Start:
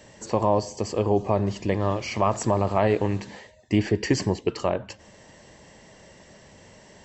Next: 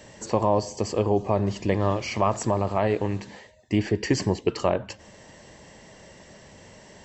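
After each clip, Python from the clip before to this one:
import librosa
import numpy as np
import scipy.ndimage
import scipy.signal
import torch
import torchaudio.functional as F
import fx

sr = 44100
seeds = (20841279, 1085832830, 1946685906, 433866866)

y = fx.rider(x, sr, range_db=10, speed_s=0.5)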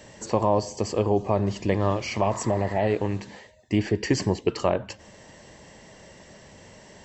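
y = fx.spec_repair(x, sr, seeds[0], start_s=2.25, length_s=0.59, low_hz=900.0, high_hz=2200.0, source='both')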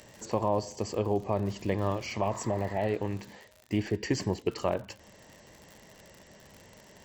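y = fx.dmg_crackle(x, sr, seeds[1], per_s=89.0, level_db=-33.0)
y = y * 10.0 ** (-6.0 / 20.0)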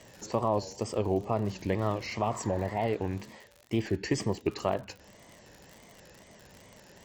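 y = fx.wow_flutter(x, sr, seeds[2], rate_hz=2.1, depth_cents=140.0)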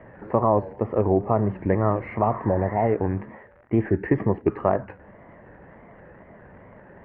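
y = scipy.signal.sosfilt(scipy.signal.butter(6, 1900.0, 'lowpass', fs=sr, output='sos'), x)
y = y * 10.0 ** (8.0 / 20.0)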